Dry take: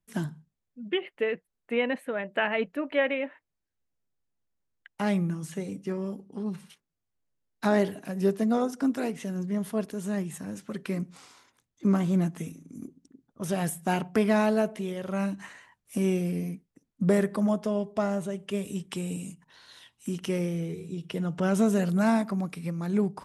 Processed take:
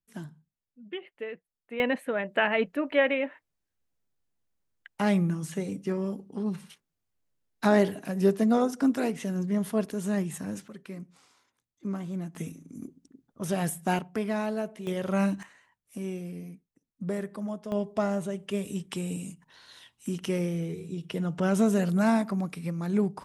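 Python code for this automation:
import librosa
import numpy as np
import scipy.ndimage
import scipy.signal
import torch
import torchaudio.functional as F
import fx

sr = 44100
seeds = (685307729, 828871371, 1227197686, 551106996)

y = fx.gain(x, sr, db=fx.steps((0.0, -9.0), (1.8, 2.0), (10.68, -9.5), (12.35, 0.0), (13.99, -6.5), (14.87, 3.5), (15.43, -9.0), (17.72, 0.0)))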